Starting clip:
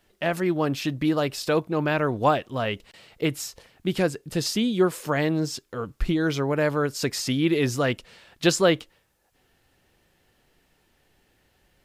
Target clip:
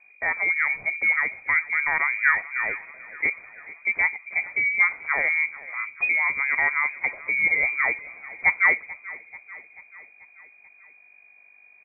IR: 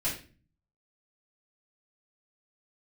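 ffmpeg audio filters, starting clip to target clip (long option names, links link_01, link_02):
-filter_complex "[0:a]aeval=exprs='val(0)+0.00224*(sin(2*PI*50*n/s)+sin(2*PI*2*50*n/s)/2+sin(2*PI*3*50*n/s)/3+sin(2*PI*4*50*n/s)/4+sin(2*PI*5*50*n/s)/5)':channel_layout=same,aecho=1:1:437|874|1311|1748|2185:0.119|0.0701|0.0414|0.0244|0.0144,asplit=2[link_01][link_02];[1:a]atrim=start_sample=2205,lowpass=frequency=1300:width=0.5412,lowpass=frequency=1300:width=1.3066[link_03];[link_02][link_03]afir=irnorm=-1:irlink=0,volume=-24dB[link_04];[link_01][link_04]amix=inputs=2:normalize=0,lowpass=frequency=2100:width_type=q:width=0.5098,lowpass=frequency=2100:width_type=q:width=0.6013,lowpass=frequency=2100:width_type=q:width=0.9,lowpass=frequency=2100:width_type=q:width=2.563,afreqshift=-2500"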